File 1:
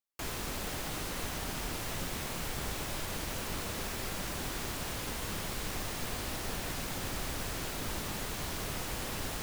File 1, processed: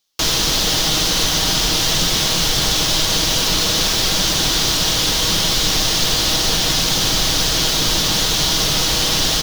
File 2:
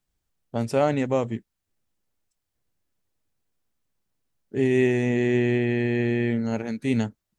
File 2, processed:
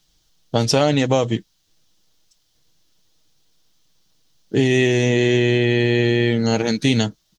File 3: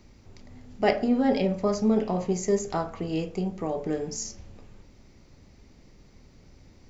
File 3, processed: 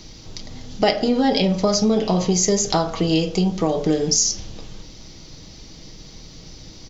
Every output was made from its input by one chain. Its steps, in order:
high-order bell 4.4 kHz +11.5 dB 1.3 oct; comb 6.3 ms, depth 39%; compression 4:1, threshold -26 dBFS; peak normalisation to -3 dBFS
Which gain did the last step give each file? +16.0 dB, +12.0 dB, +11.0 dB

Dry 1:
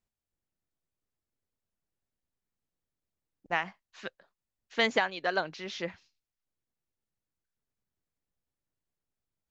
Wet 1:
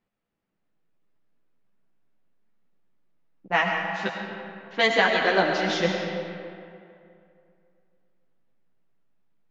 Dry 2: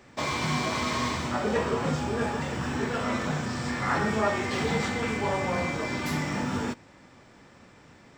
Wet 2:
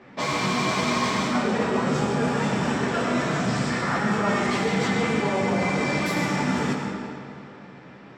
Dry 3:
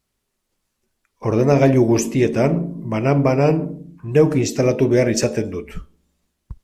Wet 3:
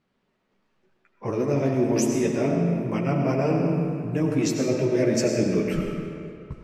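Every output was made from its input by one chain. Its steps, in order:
chorus voices 4, 0.75 Hz, delay 13 ms, depth 3.1 ms; resonant low shelf 100 Hz -11.5 dB, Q 1.5; reverse; compression 6:1, threshold -30 dBFS; reverse; algorithmic reverb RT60 2.5 s, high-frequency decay 0.7×, pre-delay 55 ms, DRR 2 dB; level-controlled noise filter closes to 2.5 kHz, open at -33.5 dBFS; normalise loudness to -24 LUFS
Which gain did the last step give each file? +13.0 dB, +8.5 dB, +7.5 dB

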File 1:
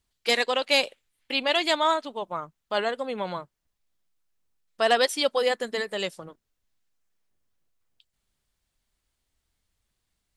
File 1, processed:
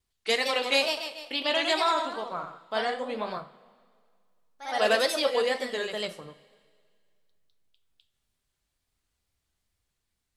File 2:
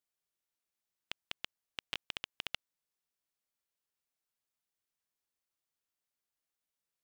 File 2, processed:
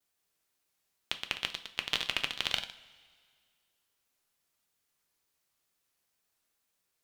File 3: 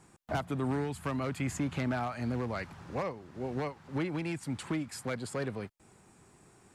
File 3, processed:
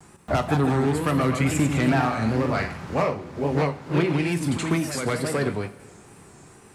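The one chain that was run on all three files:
ever faster or slower copies 187 ms, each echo +1 st, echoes 3, each echo -6 dB; wow and flutter 120 cents; two-slope reverb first 0.35 s, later 2 s, from -17 dB, DRR 7 dB; peak normalisation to -9 dBFS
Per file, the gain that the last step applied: -3.5 dB, +9.0 dB, +9.5 dB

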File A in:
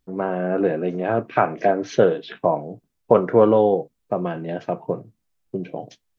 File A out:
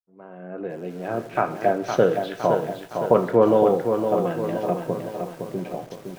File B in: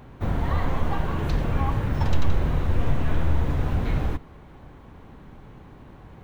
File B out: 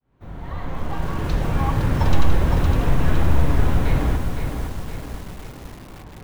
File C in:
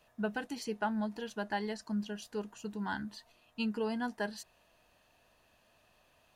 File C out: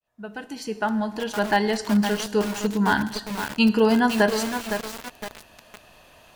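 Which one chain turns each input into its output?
fade-in on the opening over 1.86 s; two-slope reverb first 1 s, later 2.9 s, DRR 11.5 dB; bit-crushed delay 512 ms, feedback 55%, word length 7-bit, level -6 dB; normalise loudness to -23 LUFS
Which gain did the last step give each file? -2.0 dB, +4.5 dB, +16.0 dB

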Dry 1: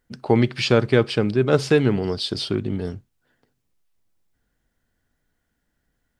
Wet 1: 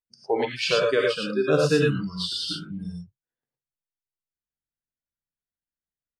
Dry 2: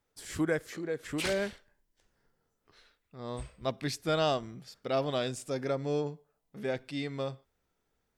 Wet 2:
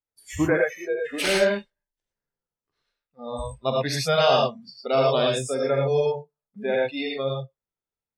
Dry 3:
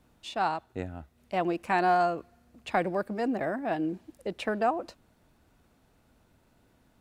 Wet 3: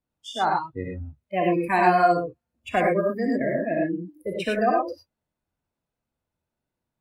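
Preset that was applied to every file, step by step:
spectral noise reduction 27 dB; gated-style reverb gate 130 ms rising, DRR -1.5 dB; normalise loudness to -24 LUFS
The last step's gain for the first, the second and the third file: -3.5 dB, +7.0 dB, +4.0 dB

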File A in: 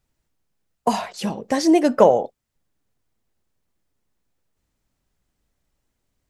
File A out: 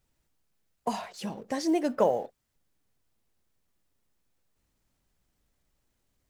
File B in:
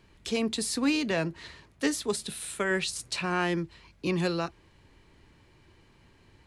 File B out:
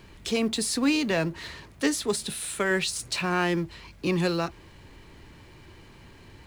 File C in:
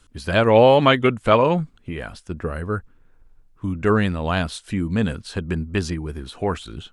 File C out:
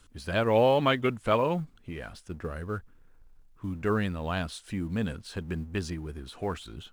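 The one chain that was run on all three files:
companding laws mixed up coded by mu; peak normalisation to -12 dBFS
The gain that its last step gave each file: -11.0 dB, +2.0 dB, -9.5 dB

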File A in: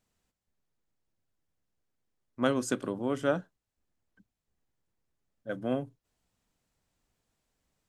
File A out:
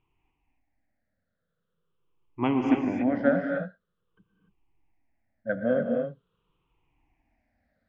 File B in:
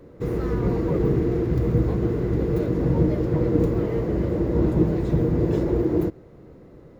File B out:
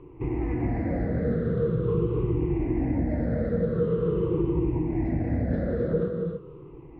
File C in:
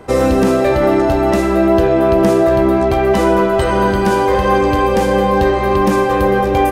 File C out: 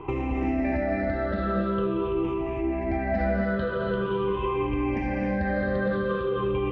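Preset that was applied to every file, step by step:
drifting ripple filter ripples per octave 0.68, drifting -0.45 Hz, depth 20 dB; low-pass 2.9 kHz 24 dB/octave; dynamic bell 770 Hz, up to -7 dB, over -23 dBFS, Q 0.81; peak limiter -7 dBFS; compression, threshold -19 dBFS; gated-style reverb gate 310 ms rising, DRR 1.5 dB; normalise loudness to -27 LUFS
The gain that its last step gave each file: +0.5 dB, -5.5 dB, -7.0 dB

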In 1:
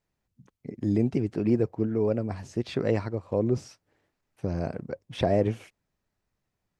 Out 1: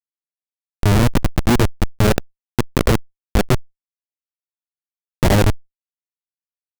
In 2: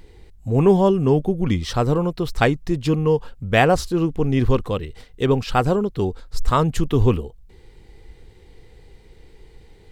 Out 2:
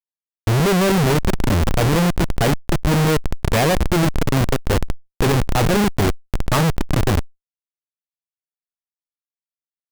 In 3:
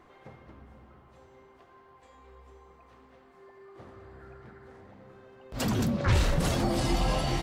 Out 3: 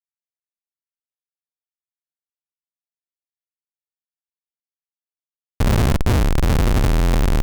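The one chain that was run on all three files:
bass shelf 66 Hz +10 dB; Schmitt trigger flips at -21.5 dBFS; level flattener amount 50%; normalise loudness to -19 LUFS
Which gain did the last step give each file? +15.5 dB, +0.5 dB, +12.5 dB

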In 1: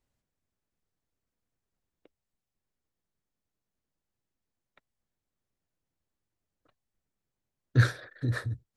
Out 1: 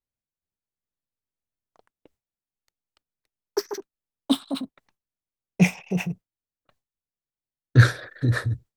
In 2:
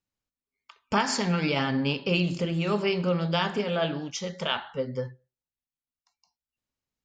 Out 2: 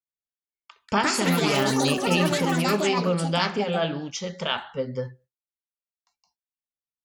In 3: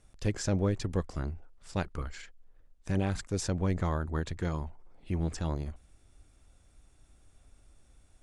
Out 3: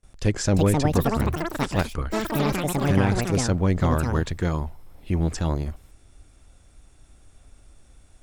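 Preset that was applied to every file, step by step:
gate with hold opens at -56 dBFS; ever faster or slower copies 421 ms, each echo +7 st, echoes 3; normalise loudness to -24 LUFS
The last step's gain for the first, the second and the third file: +7.5 dB, +1.5 dB, +8.0 dB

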